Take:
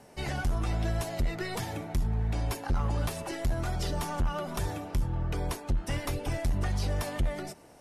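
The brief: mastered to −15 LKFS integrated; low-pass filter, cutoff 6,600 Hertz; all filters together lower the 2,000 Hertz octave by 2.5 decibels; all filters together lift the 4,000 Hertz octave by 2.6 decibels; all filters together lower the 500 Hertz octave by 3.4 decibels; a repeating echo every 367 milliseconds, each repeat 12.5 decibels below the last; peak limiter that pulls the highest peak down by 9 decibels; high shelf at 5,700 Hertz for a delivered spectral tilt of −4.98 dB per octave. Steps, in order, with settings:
low-pass filter 6,600 Hz
parametric band 500 Hz −4.5 dB
parametric band 2,000 Hz −4 dB
parametric band 4,000 Hz +8.5 dB
high-shelf EQ 5,700 Hz −8 dB
brickwall limiter −29.5 dBFS
repeating echo 367 ms, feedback 24%, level −12.5 dB
level +23 dB

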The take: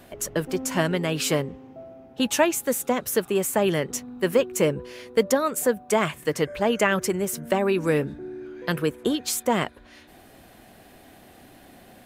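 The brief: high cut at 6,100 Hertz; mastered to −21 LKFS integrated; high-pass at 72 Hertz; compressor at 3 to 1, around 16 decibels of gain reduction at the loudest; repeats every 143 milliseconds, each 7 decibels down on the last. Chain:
high-pass filter 72 Hz
low-pass filter 6,100 Hz
downward compressor 3 to 1, threshold −38 dBFS
repeating echo 143 ms, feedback 45%, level −7 dB
level +16.5 dB

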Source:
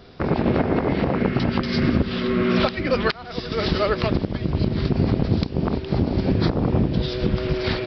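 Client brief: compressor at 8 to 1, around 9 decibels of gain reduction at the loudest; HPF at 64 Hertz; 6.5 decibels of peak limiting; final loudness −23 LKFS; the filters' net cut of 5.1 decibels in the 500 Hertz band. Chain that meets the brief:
high-pass filter 64 Hz
parametric band 500 Hz −7 dB
downward compressor 8 to 1, threshold −25 dBFS
level +8.5 dB
brickwall limiter −12 dBFS

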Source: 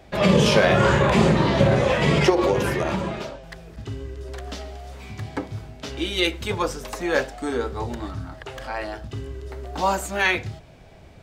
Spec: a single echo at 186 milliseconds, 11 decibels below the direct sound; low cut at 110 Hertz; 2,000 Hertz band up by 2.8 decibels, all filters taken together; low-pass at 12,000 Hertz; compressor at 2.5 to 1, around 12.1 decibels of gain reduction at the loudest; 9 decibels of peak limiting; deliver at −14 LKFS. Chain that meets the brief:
high-pass filter 110 Hz
low-pass filter 12,000 Hz
parametric band 2,000 Hz +3.5 dB
downward compressor 2.5 to 1, threshold −31 dBFS
brickwall limiter −23 dBFS
single-tap delay 186 ms −11 dB
level +20 dB

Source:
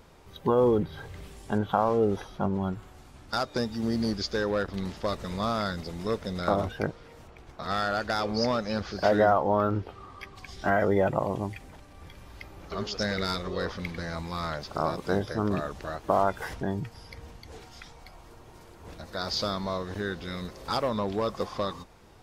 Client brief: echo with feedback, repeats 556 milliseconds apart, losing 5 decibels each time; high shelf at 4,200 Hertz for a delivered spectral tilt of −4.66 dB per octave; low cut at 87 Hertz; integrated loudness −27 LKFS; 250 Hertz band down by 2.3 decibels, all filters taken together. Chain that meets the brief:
high-pass filter 87 Hz
parametric band 250 Hz −3 dB
high-shelf EQ 4,200 Hz +8 dB
repeating echo 556 ms, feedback 56%, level −5 dB
level +1.5 dB

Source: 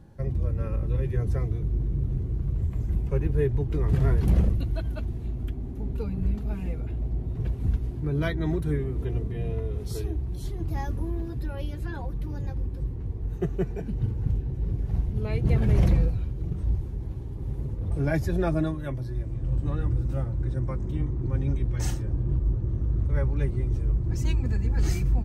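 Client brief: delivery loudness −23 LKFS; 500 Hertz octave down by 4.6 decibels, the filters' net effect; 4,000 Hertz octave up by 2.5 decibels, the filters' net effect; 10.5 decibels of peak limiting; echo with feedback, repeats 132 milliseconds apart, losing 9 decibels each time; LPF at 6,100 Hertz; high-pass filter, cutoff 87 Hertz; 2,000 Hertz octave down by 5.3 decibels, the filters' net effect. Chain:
high-pass filter 87 Hz
low-pass filter 6,100 Hz
parametric band 500 Hz −6 dB
parametric band 2,000 Hz −8 dB
parametric band 4,000 Hz +6.5 dB
brickwall limiter −23.5 dBFS
repeating echo 132 ms, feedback 35%, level −9 dB
level +10.5 dB

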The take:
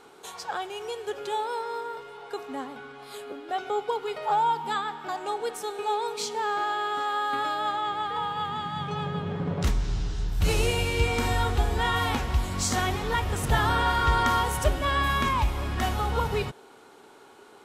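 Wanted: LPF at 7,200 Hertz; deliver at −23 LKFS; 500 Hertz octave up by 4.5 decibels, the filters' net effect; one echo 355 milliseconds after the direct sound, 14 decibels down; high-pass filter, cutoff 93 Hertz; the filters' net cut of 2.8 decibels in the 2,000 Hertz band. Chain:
high-pass filter 93 Hz
low-pass filter 7,200 Hz
parametric band 500 Hz +5.5 dB
parametric band 2,000 Hz −4 dB
single-tap delay 355 ms −14 dB
level +4.5 dB

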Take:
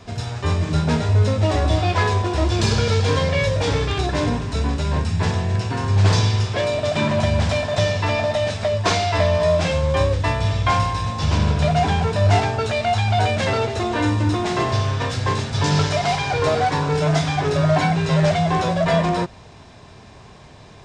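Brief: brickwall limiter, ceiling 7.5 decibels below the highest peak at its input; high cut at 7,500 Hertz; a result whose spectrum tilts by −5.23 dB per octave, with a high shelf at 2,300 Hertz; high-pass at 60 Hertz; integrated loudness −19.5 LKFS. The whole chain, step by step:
high-pass filter 60 Hz
low-pass filter 7,500 Hz
high-shelf EQ 2,300 Hz +5 dB
level +1.5 dB
brickwall limiter −10 dBFS

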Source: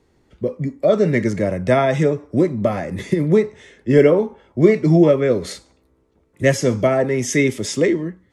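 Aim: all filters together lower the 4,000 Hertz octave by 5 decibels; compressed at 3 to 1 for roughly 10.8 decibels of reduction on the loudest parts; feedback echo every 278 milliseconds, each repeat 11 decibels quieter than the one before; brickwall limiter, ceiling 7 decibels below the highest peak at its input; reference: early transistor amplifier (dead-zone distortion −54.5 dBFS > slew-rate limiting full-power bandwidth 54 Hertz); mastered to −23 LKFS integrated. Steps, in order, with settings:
parametric band 4,000 Hz −7 dB
downward compressor 3 to 1, threshold −22 dBFS
brickwall limiter −17.5 dBFS
repeating echo 278 ms, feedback 28%, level −11 dB
dead-zone distortion −54.5 dBFS
slew-rate limiting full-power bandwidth 54 Hz
level +5 dB

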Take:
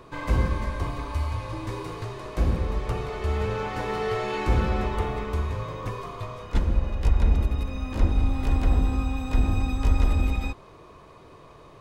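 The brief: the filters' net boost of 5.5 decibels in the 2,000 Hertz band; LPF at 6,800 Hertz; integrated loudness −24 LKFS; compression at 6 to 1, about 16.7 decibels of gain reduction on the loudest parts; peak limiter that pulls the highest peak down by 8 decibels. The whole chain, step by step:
low-pass filter 6,800 Hz
parametric band 2,000 Hz +7 dB
downward compressor 6 to 1, threshold −34 dBFS
level +18 dB
brickwall limiter −14 dBFS

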